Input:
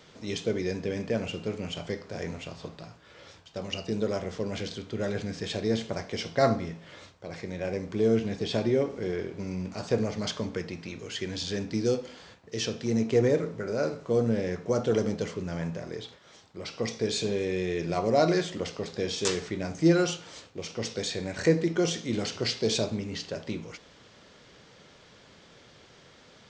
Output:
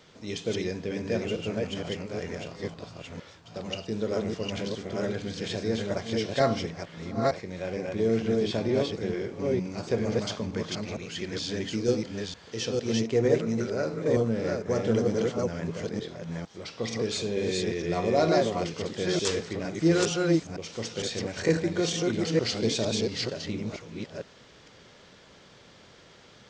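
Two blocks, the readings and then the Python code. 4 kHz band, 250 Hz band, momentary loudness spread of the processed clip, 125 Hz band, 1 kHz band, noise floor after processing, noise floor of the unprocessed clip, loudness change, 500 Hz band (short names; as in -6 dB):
+1.0 dB, +1.0 dB, 12 LU, +1.0 dB, +1.0 dB, -54 dBFS, -55 dBFS, +0.5 dB, +1.0 dB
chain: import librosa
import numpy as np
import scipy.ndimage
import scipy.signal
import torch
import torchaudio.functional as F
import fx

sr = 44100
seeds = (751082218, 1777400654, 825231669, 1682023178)

y = fx.reverse_delay(x, sr, ms=457, wet_db=-1.0)
y = y * 10.0 ** (-1.5 / 20.0)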